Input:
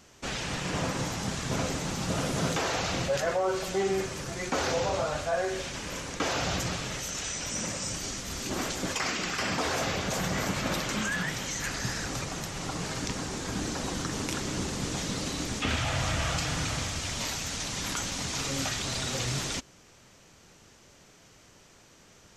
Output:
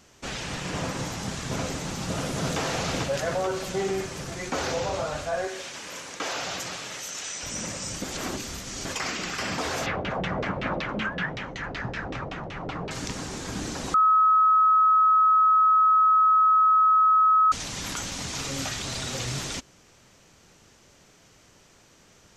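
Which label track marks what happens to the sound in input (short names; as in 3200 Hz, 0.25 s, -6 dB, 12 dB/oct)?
2.000000	2.590000	echo throw 0.44 s, feedback 65%, level -4.5 dB
5.470000	7.430000	HPF 520 Hz 6 dB/oct
8.020000	8.850000	reverse
9.860000	12.910000	LFO low-pass saw down 5.3 Hz 440–3300 Hz
13.940000	17.520000	bleep 1280 Hz -15.5 dBFS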